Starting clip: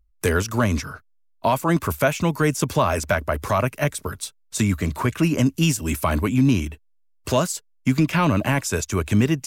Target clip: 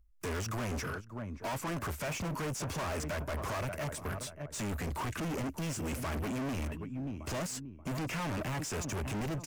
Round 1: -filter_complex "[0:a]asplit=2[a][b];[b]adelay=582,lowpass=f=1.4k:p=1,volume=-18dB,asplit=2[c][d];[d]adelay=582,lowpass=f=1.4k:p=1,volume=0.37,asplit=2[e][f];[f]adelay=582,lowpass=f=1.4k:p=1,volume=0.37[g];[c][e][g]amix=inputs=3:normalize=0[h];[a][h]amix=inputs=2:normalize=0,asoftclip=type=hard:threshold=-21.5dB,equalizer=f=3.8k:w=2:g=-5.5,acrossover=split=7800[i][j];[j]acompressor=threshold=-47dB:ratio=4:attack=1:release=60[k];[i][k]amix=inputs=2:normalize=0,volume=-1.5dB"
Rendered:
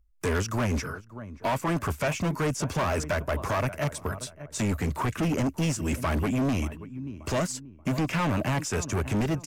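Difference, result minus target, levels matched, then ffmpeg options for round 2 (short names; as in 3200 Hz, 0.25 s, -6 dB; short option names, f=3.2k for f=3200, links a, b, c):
hard clip: distortion -5 dB
-filter_complex "[0:a]asplit=2[a][b];[b]adelay=582,lowpass=f=1.4k:p=1,volume=-18dB,asplit=2[c][d];[d]adelay=582,lowpass=f=1.4k:p=1,volume=0.37,asplit=2[e][f];[f]adelay=582,lowpass=f=1.4k:p=1,volume=0.37[g];[c][e][g]amix=inputs=3:normalize=0[h];[a][h]amix=inputs=2:normalize=0,asoftclip=type=hard:threshold=-32.5dB,equalizer=f=3.8k:w=2:g=-5.5,acrossover=split=7800[i][j];[j]acompressor=threshold=-47dB:ratio=4:attack=1:release=60[k];[i][k]amix=inputs=2:normalize=0,volume=-1.5dB"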